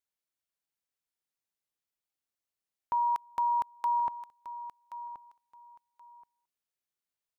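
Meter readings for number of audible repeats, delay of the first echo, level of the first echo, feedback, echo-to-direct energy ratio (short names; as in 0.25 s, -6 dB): 2, 1.077 s, -13.5 dB, 21%, -13.5 dB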